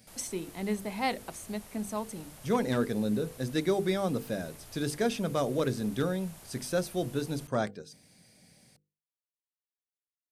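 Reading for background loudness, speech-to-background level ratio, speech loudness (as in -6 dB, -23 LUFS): -50.0 LUFS, 17.5 dB, -32.5 LUFS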